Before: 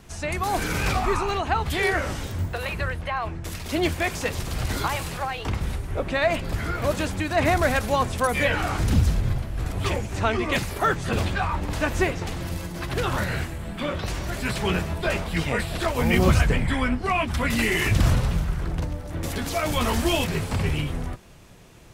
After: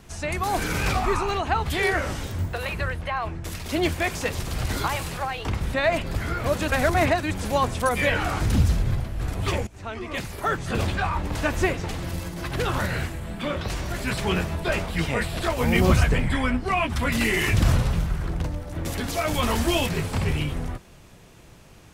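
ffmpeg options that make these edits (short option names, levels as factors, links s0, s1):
-filter_complex "[0:a]asplit=5[s0][s1][s2][s3][s4];[s0]atrim=end=5.742[s5];[s1]atrim=start=6.118:end=7.062[s6];[s2]atrim=start=7.058:end=7.832,asetpts=PTS-STARTPTS,areverse[s7];[s3]atrim=start=7.828:end=10.05,asetpts=PTS-STARTPTS,afade=t=out:st=2.218:d=0.004:c=hsin:silence=0.125893[s8];[s4]atrim=start=10.05,asetpts=PTS-STARTPTS,afade=t=in:d=1.22:silence=0.125893[s9];[s5][s6]acrossfade=d=0.004:c1=hsin:c2=hsin[s10];[s10][s7]acrossfade=d=0.004:c1=hsin:c2=hsin[s11];[s8][s9]concat=n=2:v=0:a=1[s12];[s11][s12]acrossfade=d=0.004:c1=hsin:c2=hsin"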